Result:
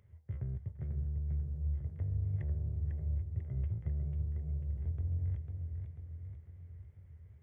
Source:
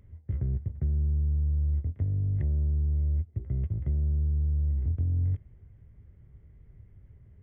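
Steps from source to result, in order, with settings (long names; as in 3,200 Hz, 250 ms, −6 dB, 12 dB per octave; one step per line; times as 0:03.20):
high-pass filter 100 Hz 12 dB per octave
parametric band 260 Hz −14 dB 0.9 octaves
feedback echo with a swinging delay time 495 ms, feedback 56%, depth 137 cents, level −6 dB
level −3 dB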